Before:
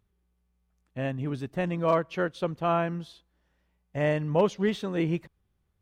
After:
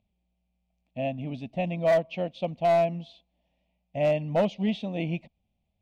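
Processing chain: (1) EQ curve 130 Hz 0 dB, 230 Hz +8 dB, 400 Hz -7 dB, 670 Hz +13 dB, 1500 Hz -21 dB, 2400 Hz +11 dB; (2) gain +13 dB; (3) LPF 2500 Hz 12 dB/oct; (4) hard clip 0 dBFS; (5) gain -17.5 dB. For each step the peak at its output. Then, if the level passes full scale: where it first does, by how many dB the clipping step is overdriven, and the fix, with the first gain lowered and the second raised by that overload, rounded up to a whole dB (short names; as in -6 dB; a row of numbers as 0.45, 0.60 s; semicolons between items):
-5.5, +7.5, +7.0, 0.0, -17.5 dBFS; step 2, 7.0 dB; step 2 +6 dB, step 5 -10.5 dB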